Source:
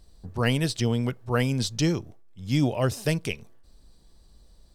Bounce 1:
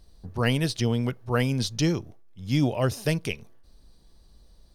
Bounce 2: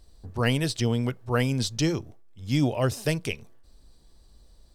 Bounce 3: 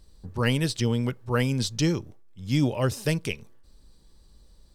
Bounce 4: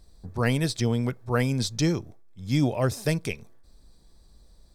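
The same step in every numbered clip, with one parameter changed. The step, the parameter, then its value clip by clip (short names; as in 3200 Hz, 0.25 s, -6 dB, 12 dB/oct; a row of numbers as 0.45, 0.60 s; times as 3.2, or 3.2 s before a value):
notch, frequency: 7700, 180, 690, 2900 Hz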